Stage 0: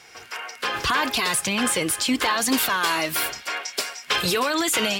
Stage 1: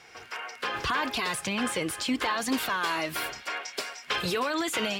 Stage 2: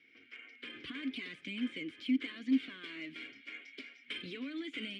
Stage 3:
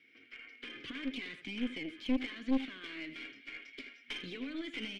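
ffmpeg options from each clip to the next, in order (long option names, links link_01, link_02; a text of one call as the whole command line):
ffmpeg -i in.wav -filter_complex "[0:a]highshelf=frequency=5200:gain=-9.5,asplit=2[link_01][link_02];[link_02]acompressor=threshold=-31dB:ratio=6,volume=-2dB[link_03];[link_01][link_03]amix=inputs=2:normalize=0,volume=-7dB" out.wav
ffmpeg -i in.wav -filter_complex "[0:a]asplit=3[link_01][link_02][link_03];[link_01]bandpass=frequency=270:width_type=q:width=8,volume=0dB[link_04];[link_02]bandpass=frequency=2290:width_type=q:width=8,volume=-6dB[link_05];[link_03]bandpass=frequency=3010:width_type=q:width=8,volume=-9dB[link_06];[link_04][link_05][link_06]amix=inputs=3:normalize=0,adynamicsmooth=sensitivity=8:basefreq=4900,volume=1dB" out.wav
ffmpeg -i in.wav -filter_complex "[0:a]asplit=2[link_01][link_02];[link_02]adelay=80,highpass=300,lowpass=3400,asoftclip=type=hard:threshold=-30dB,volume=-9dB[link_03];[link_01][link_03]amix=inputs=2:normalize=0,aeval=exprs='(tanh(25.1*val(0)+0.65)-tanh(0.65))/25.1':channel_layout=same,volume=3.5dB" out.wav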